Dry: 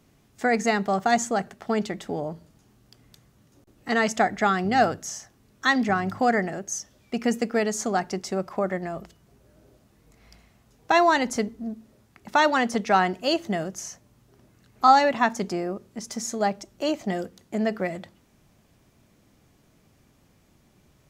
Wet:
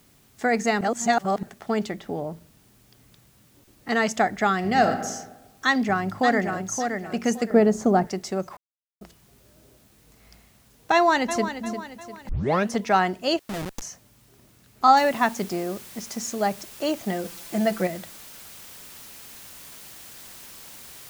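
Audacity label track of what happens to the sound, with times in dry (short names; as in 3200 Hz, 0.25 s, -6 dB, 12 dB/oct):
0.810000	1.430000	reverse
1.970000	3.890000	air absorption 150 m
4.560000	5.080000	reverb throw, RT60 1.1 s, DRR 6 dB
5.660000	6.760000	echo throw 0.57 s, feedback 25%, level -6 dB
7.500000	8.070000	tilt shelf lows +9.5 dB, about 1200 Hz
8.570000	9.010000	mute
10.930000	11.630000	echo throw 0.35 s, feedback 45%, level -10.5 dB
12.290000	12.290000	tape start 0.40 s
13.390000	13.820000	Schmitt trigger flips at -27.5 dBFS
14.970000	14.970000	noise floor step -61 dB -44 dB
17.240000	17.870000	comb 5.9 ms, depth 86%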